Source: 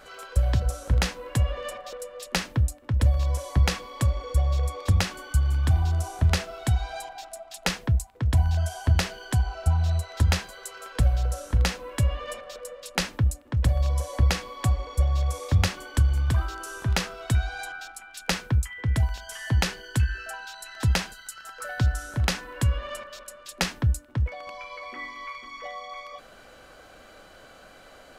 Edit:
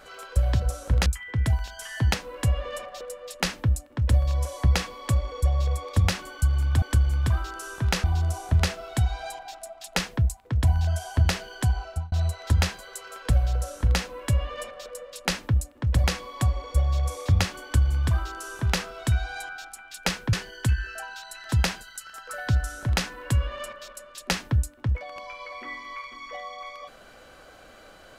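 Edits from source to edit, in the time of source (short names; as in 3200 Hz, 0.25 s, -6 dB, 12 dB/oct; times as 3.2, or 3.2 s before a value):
9.5–9.82 fade out
13.74–14.27 cut
15.86–17.08 copy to 5.74
18.56–19.64 move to 1.06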